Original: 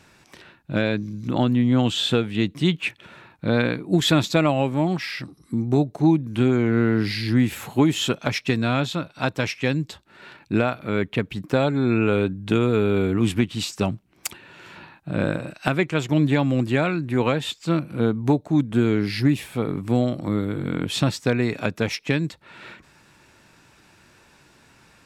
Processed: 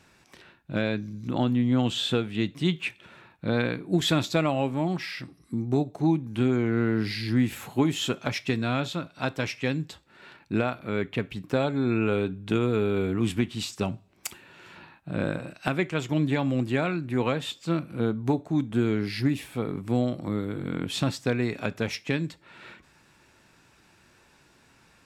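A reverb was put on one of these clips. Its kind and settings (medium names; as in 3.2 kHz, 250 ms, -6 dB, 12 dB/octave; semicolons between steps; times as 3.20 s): two-slope reverb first 0.29 s, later 1.5 s, from -27 dB, DRR 15 dB; trim -5 dB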